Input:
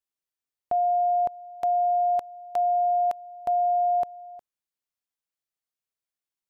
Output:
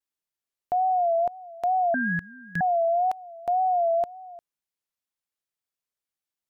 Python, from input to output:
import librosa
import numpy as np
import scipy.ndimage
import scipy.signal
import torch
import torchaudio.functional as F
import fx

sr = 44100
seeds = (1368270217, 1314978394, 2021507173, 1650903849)

y = fx.wow_flutter(x, sr, seeds[0], rate_hz=2.1, depth_cents=100.0)
y = fx.ring_mod(y, sr, carrier_hz=920.0, at=(1.94, 2.61))